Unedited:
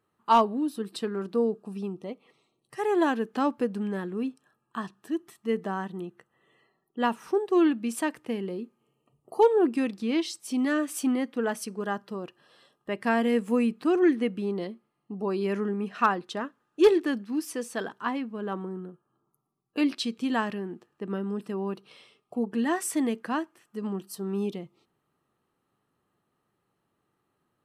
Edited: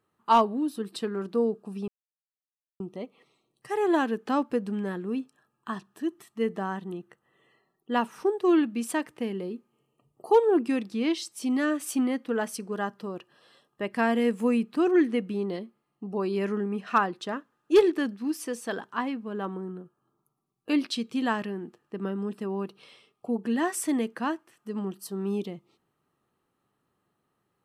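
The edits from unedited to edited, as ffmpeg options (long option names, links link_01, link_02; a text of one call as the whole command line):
ffmpeg -i in.wav -filter_complex "[0:a]asplit=2[link_01][link_02];[link_01]atrim=end=1.88,asetpts=PTS-STARTPTS,afade=type=out:start_time=1.876:duration=0.004:curve=hsin,apad=pad_dur=0.92[link_03];[link_02]atrim=start=1.88,asetpts=PTS-STARTPTS,afade=type=in:duration=0.004:curve=hsin[link_04];[link_03][link_04]concat=n=2:v=0:a=1" out.wav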